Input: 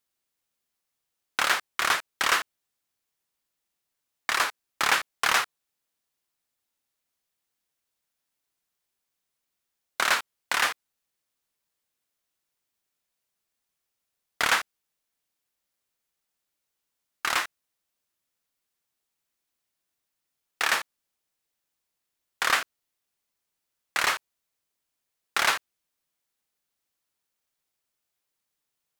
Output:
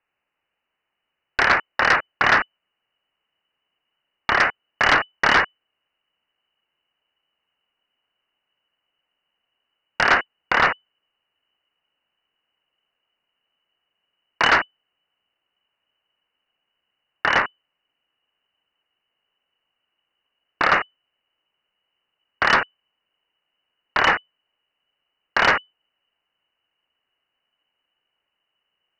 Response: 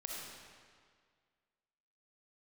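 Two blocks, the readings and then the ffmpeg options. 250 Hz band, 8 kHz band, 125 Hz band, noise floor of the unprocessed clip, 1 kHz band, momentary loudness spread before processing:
+13.0 dB, −8.5 dB, +15.5 dB, −83 dBFS, +8.0 dB, 11 LU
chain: -af "asubboost=boost=5.5:cutoff=180,lowpass=frequency=2600:width_type=q:width=0.5098,lowpass=frequency=2600:width_type=q:width=0.6013,lowpass=frequency=2600:width_type=q:width=0.9,lowpass=frequency=2600:width_type=q:width=2.563,afreqshift=-3000,aeval=exprs='0.335*sin(PI/2*2.24*val(0)/0.335)':channel_layout=same"

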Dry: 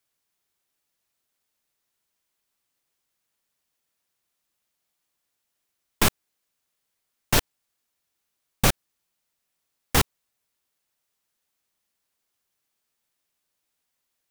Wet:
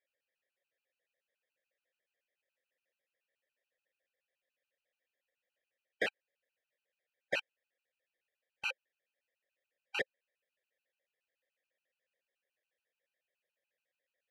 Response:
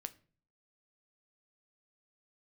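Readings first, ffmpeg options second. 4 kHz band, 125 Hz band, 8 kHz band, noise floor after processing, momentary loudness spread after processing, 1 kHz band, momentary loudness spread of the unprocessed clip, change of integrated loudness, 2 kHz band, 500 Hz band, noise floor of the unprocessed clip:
−16.0 dB, −35.5 dB, −30.5 dB, below −85 dBFS, 4 LU, −20.0 dB, 3 LU, −14.5 dB, −7.5 dB, −10.5 dB, −80 dBFS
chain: -filter_complex "[0:a]asplit=2[link_01][link_02];[link_02]highpass=frequency=720:poles=1,volume=18dB,asoftclip=type=tanh:threshold=-5dB[link_03];[link_01][link_03]amix=inputs=2:normalize=0,lowpass=frequency=2600:poles=1,volume=-6dB,asplit=3[link_04][link_05][link_06];[link_04]bandpass=frequency=530:width_type=q:width=8,volume=0dB[link_07];[link_05]bandpass=frequency=1840:width_type=q:width=8,volume=-6dB[link_08];[link_06]bandpass=frequency=2480:width_type=q:width=8,volume=-9dB[link_09];[link_07][link_08][link_09]amix=inputs=3:normalize=0,afftfilt=real='re*gt(sin(2*PI*7*pts/sr)*(1-2*mod(floor(b*sr/1024/780),2)),0)':imag='im*gt(sin(2*PI*7*pts/sr)*(1-2*mod(floor(b*sr/1024/780),2)),0)':win_size=1024:overlap=0.75,volume=1dB"

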